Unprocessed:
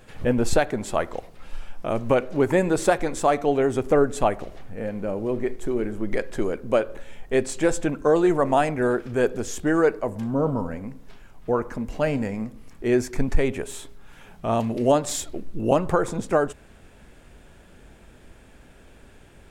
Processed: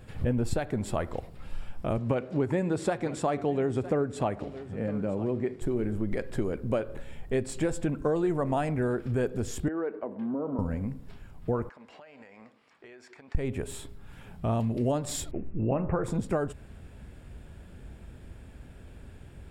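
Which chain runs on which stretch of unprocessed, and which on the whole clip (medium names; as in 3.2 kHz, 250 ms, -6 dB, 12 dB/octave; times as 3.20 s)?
1.97–5.62 s: band-pass 110–7900 Hz + delay 959 ms -19 dB
9.68–10.59 s: high-pass 240 Hz 24 dB/octave + compression 2.5:1, threshold -27 dBFS + distance through air 420 m
11.69–13.35 s: band-pass 790–4300 Hz + compression 16:1, threshold -43 dBFS
15.31–16.04 s: Chebyshev low-pass 2.7 kHz, order 6 + de-hum 76.98 Hz, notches 25
whole clip: peaking EQ 83 Hz +12.5 dB 2.8 oct; band-stop 6.2 kHz, Q 7.4; compression 3:1, threshold -21 dBFS; trim -4.5 dB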